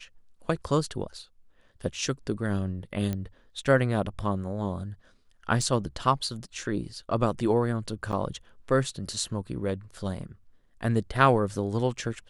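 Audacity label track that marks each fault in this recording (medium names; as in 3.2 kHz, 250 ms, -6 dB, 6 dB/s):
3.130000	3.130000	pop -18 dBFS
5.620000	5.620000	dropout 2.1 ms
8.120000	8.130000	dropout 7.9 ms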